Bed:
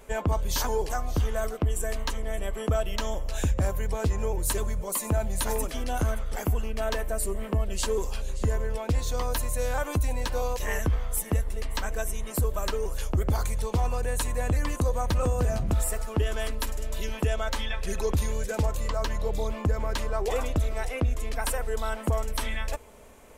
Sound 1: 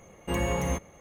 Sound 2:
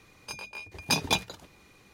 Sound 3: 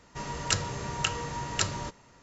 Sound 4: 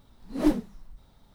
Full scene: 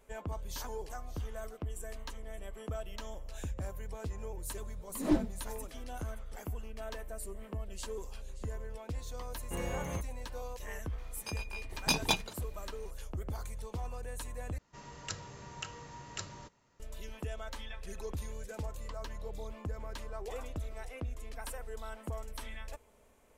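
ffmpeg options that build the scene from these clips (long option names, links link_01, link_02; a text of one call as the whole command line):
ffmpeg -i bed.wav -i cue0.wav -i cue1.wav -i cue2.wav -i cue3.wav -filter_complex "[0:a]volume=-13.5dB[link_01];[4:a]lowpass=7300[link_02];[link_01]asplit=2[link_03][link_04];[link_03]atrim=end=14.584[link_05];[3:a]atrim=end=2.22,asetpts=PTS-STARTPTS,volume=-13.5dB[link_06];[link_04]atrim=start=16.796[link_07];[link_02]atrim=end=1.34,asetpts=PTS-STARTPTS,volume=-5.5dB,afade=type=in:duration=0.004:curve=hsin,afade=type=out:start_time=1.336:duration=0.004:curve=hsin,adelay=205065S[link_08];[1:a]atrim=end=1,asetpts=PTS-STARTPTS,volume=-10.5dB,afade=type=in:duration=0.004:curve=hsin,afade=type=out:start_time=0.996:duration=0.004:curve=hsin,adelay=9230[link_09];[2:a]atrim=end=1.93,asetpts=PTS-STARTPTS,volume=-3.5dB,afade=type=in:duration=0.004:curve=hsin,afade=type=out:start_time=1.926:duration=0.004:curve=hsin,adelay=484218S[link_10];[link_05][link_06]acrossfade=duration=0.004:curve1=hsin:curve2=hsin[link_11];[link_11][link_07]acrossfade=duration=0.004:curve1=hsin:curve2=hsin[link_12];[link_12][link_08][link_09][link_10]amix=inputs=4:normalize=0" out.wav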